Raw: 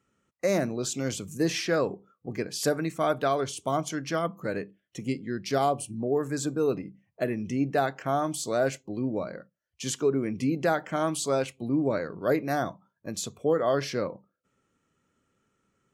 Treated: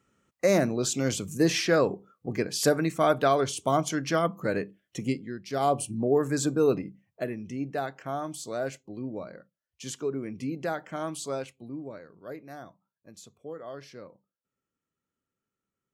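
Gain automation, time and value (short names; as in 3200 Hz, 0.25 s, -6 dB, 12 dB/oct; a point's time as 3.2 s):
5.05 s +3 dB
5.46 s -8.5 dB
5.73 s +3 dB
6.75 s +3 dB
7.43 s -6 dB
11.31 s -6 dB
12.01 s -15.5 dB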